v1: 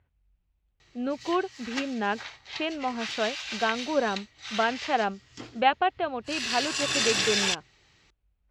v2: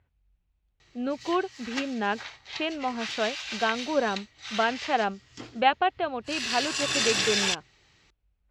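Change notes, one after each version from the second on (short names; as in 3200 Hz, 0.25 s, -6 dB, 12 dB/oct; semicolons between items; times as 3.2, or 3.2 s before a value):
speech: remove air absorption 60 m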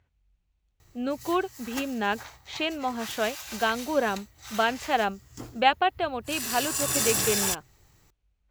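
background: remove weighting filter D; master: remove air absorption 140 m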